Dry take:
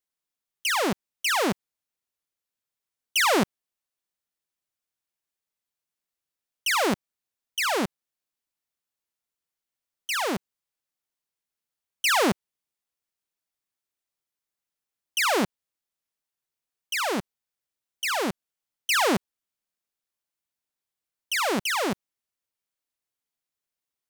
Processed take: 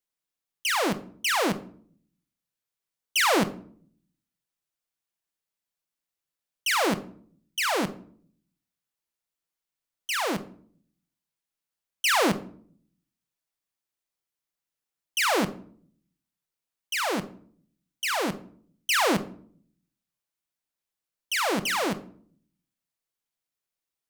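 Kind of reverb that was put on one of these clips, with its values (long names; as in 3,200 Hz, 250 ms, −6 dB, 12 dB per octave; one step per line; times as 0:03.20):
rectangular room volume 670 cubic metres, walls furnished, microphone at 0.7 metres
level −1 dB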